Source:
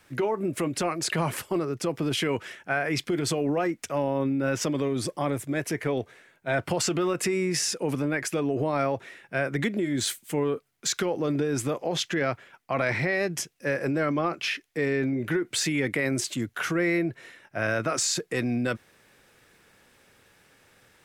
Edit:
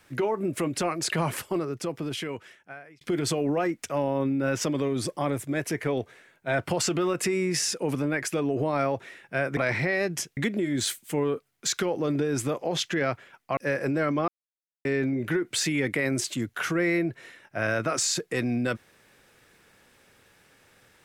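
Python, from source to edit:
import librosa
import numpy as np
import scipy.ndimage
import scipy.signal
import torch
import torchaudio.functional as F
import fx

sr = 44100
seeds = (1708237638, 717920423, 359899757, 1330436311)

y = fx.edit(x, sr, fx.fade_out_span(start_s=1.39, length_s=1.62),
    fx.move(start_s=12.77, length_s=0.8, to_s=9.57),
    fx.silence(start_s=14.28, length_s=0.57), tone=tone)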